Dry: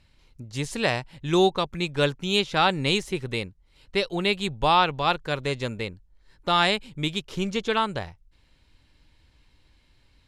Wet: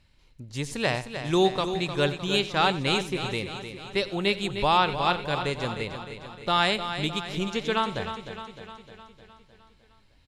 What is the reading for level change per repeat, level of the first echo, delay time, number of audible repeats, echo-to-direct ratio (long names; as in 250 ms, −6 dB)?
repeats not evenly spaced, −16.5 dB, 91 ms, 9, −7.0 dB